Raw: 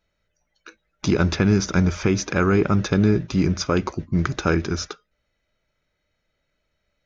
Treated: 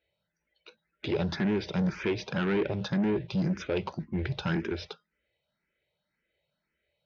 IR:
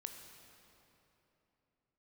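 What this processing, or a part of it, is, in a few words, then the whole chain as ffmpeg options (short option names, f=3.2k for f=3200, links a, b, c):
barber-pole phaser into a guitar amplifier: -filter_complex "[0:a]asplit=2[a][b];[b]afreqshift=1.9[c];[a][c]amix=inputs=2:normalize=1,asoftclip=type=tanh:threshold=-21dB,highpass=100,equalizer=f=100:t=q:w=4:g=-8,equalizer=f=270:t=q:w=4:g=-7,equalizer=f=690:t=q:w=4:g=-3,equalizer=f=1.2k:t=q:w=4:g=-10,lowpass=f=4.1k:w=0.5412,lowpass=f=4.1k:w=1.3066,asettb=1/sr,asplit=3[d][e][f];[d]atrim=end=3.924[g];[e]atrim=start=3.92:end=4.56,asetpts=PTS-STARTPTS,afade=t=in:d=0.004:c=qsin,afade=t=out:st=0.636:d=0.004:c=qsin,asubboost=boost=10:cutoff=140[h];[f]atrim=start=4.556[i];[g][h]acrossfade=d=0.004:c1=hsin:c2=qsin[j];[j][i]acrossfade=d=0.004:c1=qsin:c2=hsin"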